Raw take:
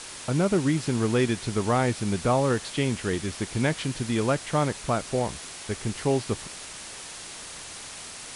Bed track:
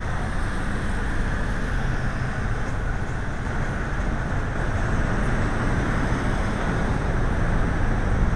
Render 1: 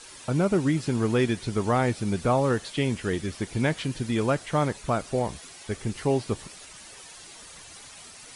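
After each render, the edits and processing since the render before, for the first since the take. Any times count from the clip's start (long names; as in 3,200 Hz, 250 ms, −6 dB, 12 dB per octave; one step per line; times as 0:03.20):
broadband denoise 10 dB, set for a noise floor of −41 dBFS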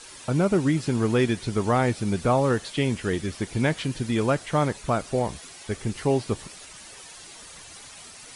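level +1.5 dB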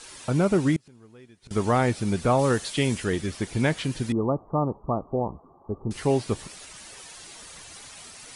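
0:00.76–0:01.51: gate with flip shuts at −24 dBFS, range −28 dB
0:02.39–0:03.04: high-shelf EQ 4,600 Hz +7.5 dB
0:04.12–0:05.91: Chebyshev low-pass with heavy ripple 1,200 Hz, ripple 3 dB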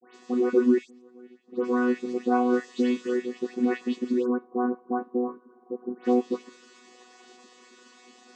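channel vocoder with a chord as carrier bare fifth, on B3
all-pass dispersion highs, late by 148 ms, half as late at 2,200 Hz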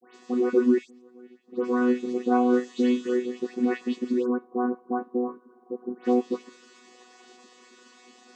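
0:01.77–0:03.40: flutter between parallel walls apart 6.9 metres, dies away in 0.22 s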